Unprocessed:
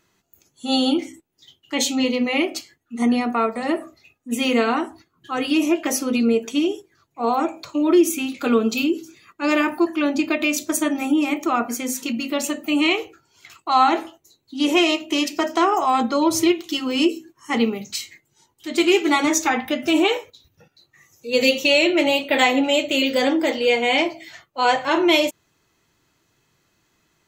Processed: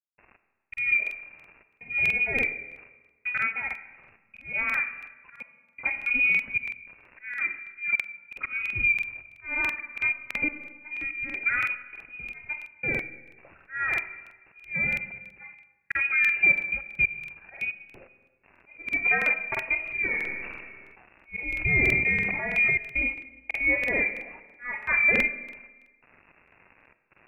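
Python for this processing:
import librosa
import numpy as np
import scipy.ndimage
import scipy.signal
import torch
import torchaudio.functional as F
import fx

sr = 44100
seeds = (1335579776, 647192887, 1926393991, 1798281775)

y = fx.dmg_crackle(x, sr, seeds[0], per_s=350.0, level_db=-29.0)
y = fx.peak_eq(y, sr, hz=1500.0, db=-2.5, octaves=2.2)
y = fx.comb_fb(y, sr, f0_hz=580.0, decay_s=0.45, harmonics='all', damping=0.0, mix_pct=50)
y = fx.auto_swell(y, sr, attack_ms=327.0)
y = fx.dynamic_eq(y, sr, hz=300.0, q=1.8, threshold_db=-40.0, ratio=4.0, max_db=4)
y = fx.step_gate(y, sr, bpm=83, pattern='.x..xxxxx.xxxx', floor_db=-60.0, edge_ms=4.5)
y = fx.freq_invert(y, sr, carrier_hz=2700)
y = fx.rev_freeverb(y, sr, rt60_s=1.3, hf_ratio=0.8, predelay_ms=15, drr_db=11.5)
y = fx.buffer_crackle(y, sr, first_s=0.69, period_s=0.33, block=2048, kind='repeat')
y = fx.sustainer(y, sr, db_per_s=31.0, at=(20.11, 22.71))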